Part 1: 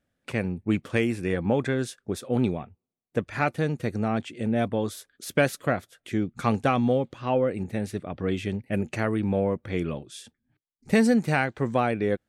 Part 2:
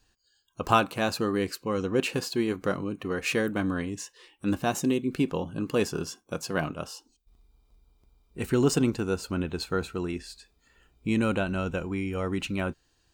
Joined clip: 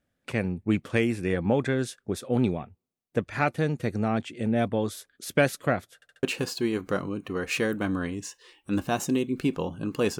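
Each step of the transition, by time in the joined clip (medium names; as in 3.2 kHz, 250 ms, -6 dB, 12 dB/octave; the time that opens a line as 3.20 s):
part 1
5.95 s: stutter in place 0.07 s, 4 plays
6.23 s: go over to part 2 from 1.98 s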